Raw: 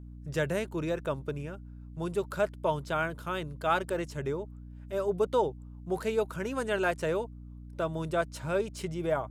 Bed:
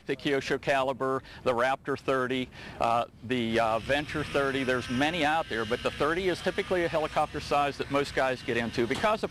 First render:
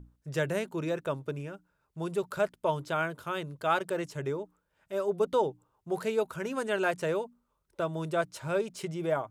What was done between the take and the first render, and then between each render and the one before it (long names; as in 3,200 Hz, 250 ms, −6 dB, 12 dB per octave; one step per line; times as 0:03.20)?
mains-hum notches 60/120/180/240/300 Hz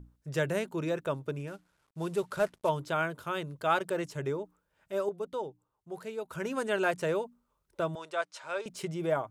0:01.47–0:02.69: variable-slope delta modulation 64 kbit/s
0:05.09–0:06.31: clip gain −9 dB
0:07.95–0:08.66: band-pass filter 700–6,900 Hz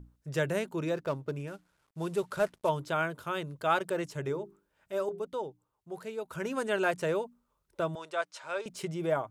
0:00.94–0:01.36: running median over 15 samples
0:04.23–0:05.20: mains-hum notches 50/100/150/200/250/300/350/400 Hz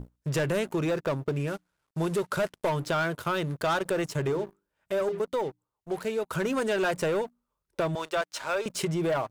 leveller curve on the samples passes 3
downward compressor 2.5 to 1, threshold −27 dBFS, peak gain reduction 6 dB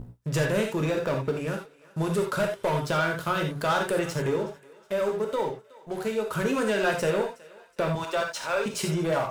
feedback echo with a high-pass in the loop 369 ms, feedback 41%, high-pass 600 Hz, level −20.5 dB
reverb whose tail is shaped and stops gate 110 ms flat, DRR 1.5 dB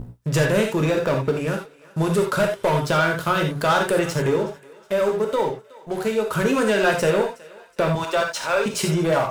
level +6 dB